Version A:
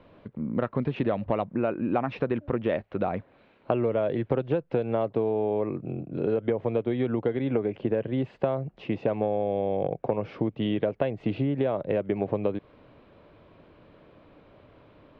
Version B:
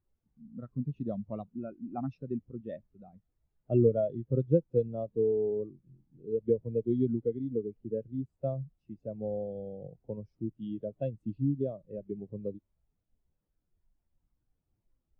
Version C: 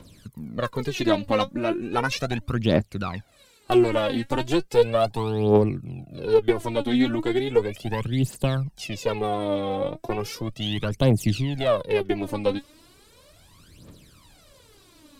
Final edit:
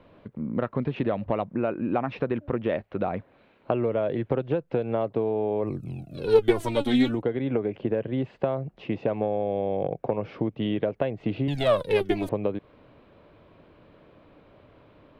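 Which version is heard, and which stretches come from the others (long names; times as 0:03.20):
A
0:05.74–0:07.11: punch in from C, crossfade 0.24 s
0:11.48–0:12.29: punch in from C
not used: B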